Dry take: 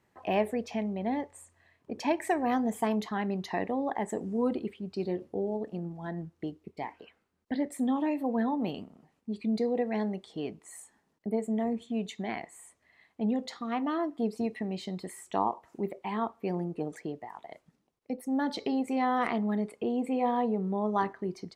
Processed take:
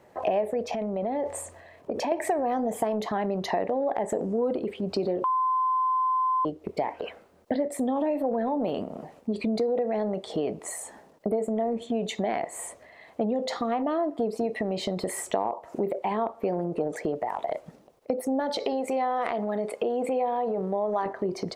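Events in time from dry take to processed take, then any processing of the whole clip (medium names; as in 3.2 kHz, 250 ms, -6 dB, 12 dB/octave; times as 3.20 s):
0.73–2.12 s: compression, threshold -40 dBFS
5.24–6.45 s: bleep 1.03 kHz -22.5 dBFS
18.40–21.06 s: bass shelf 400 Hz -10 dB
whole clip: peaking EQ 580 Hz +14.5 dB 1.1 oct; transient shaper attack -1 dB, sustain +6 dB; compression 6:1, threshold -34 dBFS; trim +9 dB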